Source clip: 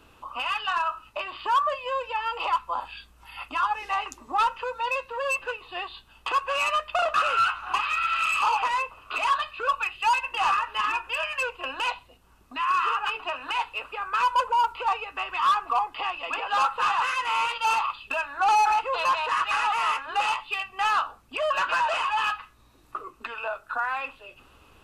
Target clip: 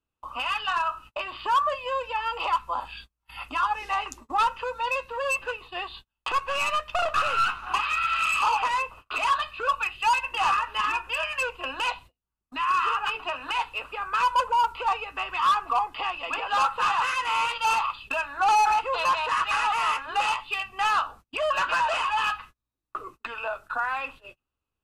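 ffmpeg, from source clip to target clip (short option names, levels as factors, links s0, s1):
-filter_complex "[0:a]asettb=1/sr,asplit=3[s0][s1][s2];[s0]atrim=end=6.314[s3];[s1]atrim=start=6.31:end=7.67,asetpts=PTS-STARTPTS,afade=t=in:d=0.004:c=qsin,afade=t=out:st=1.356:d=0.004:c=qsin,aeval=exprs='if(lt(val(0),0),0.708*val(0),val(0))':c=same[s4];[s2]atrim=start=7.666[s5];[s3][s4]acrossfade=d=0.004:c1=hsin:c2=qsin[s6];[s6][s5]acrossfade=d=0.004:c1=qsin:c2=hsin,agate=range=0.02:threshold=0.00562:ratio=16:detection=peak,bass=f=250:g=5,treble=f=4000:g=2"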